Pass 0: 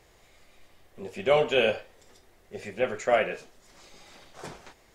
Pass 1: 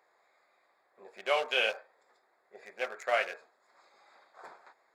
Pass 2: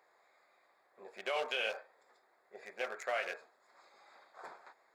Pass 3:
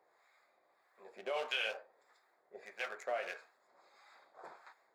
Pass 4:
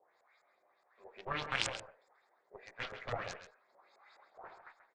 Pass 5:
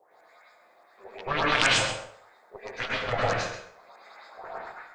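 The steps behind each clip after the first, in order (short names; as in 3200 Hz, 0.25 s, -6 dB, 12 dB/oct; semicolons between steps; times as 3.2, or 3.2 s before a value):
Wiener smoothing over 15 samples; HPF 890 Hz 12 dB/oct
limiter -25 dBFS, peak gain reduction 11.5 dB
flange 0.44 Hz, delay 5.4 ms, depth 7.6 ms, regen -74%; harmonic tremolo 1.6 Hz, depth 70%, crossover 870 Hz; gain +5.5 dB
added harmonics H 3 -8 dB, 6 -24 dB, 7 -43 dB, 8 -44 dB, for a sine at -22 dBFS; LFO low-pass saw up 4.8 Hz 530–8000 Hz; outdoor echo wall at 23 m, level -10 dB; gain +9.5 dB
plate-style reverb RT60 0.54 s, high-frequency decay 0.9×, pre-delay 90 ms, DRR -4.5 dB; gain +8.5 dB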